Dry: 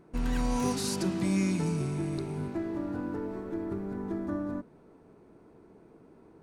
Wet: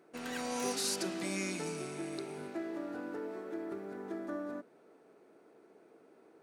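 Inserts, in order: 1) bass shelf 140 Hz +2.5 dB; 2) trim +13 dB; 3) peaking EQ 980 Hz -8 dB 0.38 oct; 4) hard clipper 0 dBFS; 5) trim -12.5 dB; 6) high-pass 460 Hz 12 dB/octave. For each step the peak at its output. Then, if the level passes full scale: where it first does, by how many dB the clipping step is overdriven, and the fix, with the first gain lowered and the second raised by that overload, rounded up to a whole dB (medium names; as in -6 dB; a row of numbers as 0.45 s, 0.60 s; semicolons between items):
-17.5 dBFS, -4.5 dBFS, -4.5 dBFS, -4.5 dBFS, -17.0 dBFS, -22.0 dBFS; nothing clips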